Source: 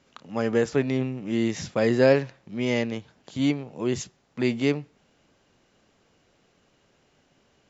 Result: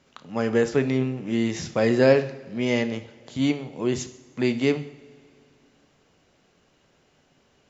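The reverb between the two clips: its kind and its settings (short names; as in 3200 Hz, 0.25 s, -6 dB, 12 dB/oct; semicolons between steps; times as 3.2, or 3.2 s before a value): two-slope reverb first 0.61 s, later 2.6 s, from -16 dB, DRR 9.5 dB; gain +1 dB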